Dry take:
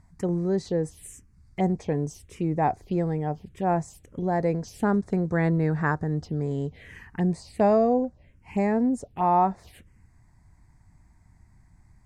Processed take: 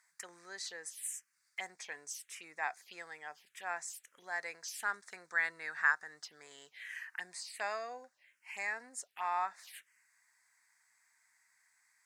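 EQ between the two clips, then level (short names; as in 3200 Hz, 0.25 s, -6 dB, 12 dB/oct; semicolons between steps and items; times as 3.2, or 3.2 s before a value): resonant high-pass 1600 Hz, resonance Q 2.1; high shelf 3400 Hz +11.5 dB; -6.5 dB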